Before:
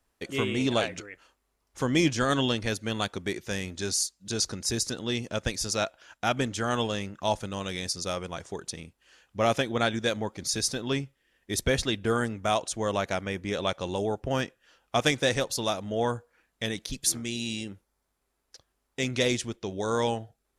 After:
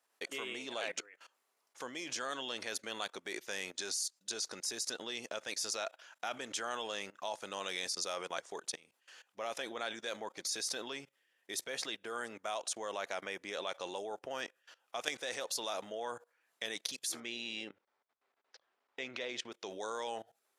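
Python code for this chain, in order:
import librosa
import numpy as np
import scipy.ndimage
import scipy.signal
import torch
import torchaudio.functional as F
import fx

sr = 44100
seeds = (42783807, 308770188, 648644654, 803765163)

y = fx.lowpass(x, sr, hz=3100.0, slope=12, at=(17.2, 19.52))
y = fx.level_steps(y, sr, step_db=20)
y = scipy.signal.sosfilt(scipy.signal.butter(2, 530.0, 'highpass', fs=sr, output='sos'), y)
y = F.gain(torch.from_numpy(y), 4.0).numpy()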